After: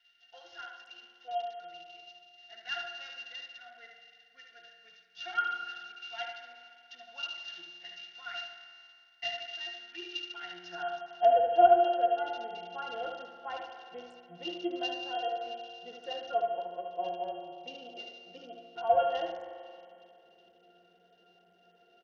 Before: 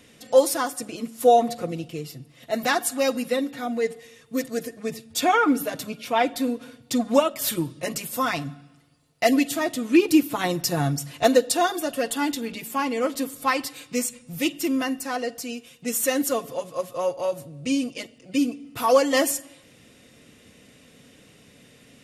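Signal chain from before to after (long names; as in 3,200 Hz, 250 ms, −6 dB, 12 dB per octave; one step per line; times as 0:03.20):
high-pass filter sweep 2,000 Hz → 570 Hz, 0:10.48–0:11.31
dynamic equaliser 330 Hz, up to −3 dB, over −29 dBFS, Q 0.75
spring reverb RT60 2.4 s, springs 45 ms, chirp 75 ms, DRR 6 dB
in parallel at −6 dB: soft clipping −14.5 dBFS, distortion −10 dB
on the sum: resonances in every octave F, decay 0.17 s
repeating echo 73 ms, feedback 42%, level −5 dB
SBC 64 kbit/s 48,000 Hz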